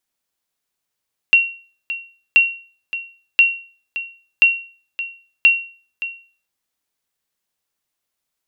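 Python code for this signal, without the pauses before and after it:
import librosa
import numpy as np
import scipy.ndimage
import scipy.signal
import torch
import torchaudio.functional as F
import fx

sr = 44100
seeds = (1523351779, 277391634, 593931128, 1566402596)

y = fx.sonar_ping(sr, hz=2740.0, decay_s=0.41, every_s=1.03, pings=5, echo_s=0.57, echo_db=-14.0, level_db=-4.0)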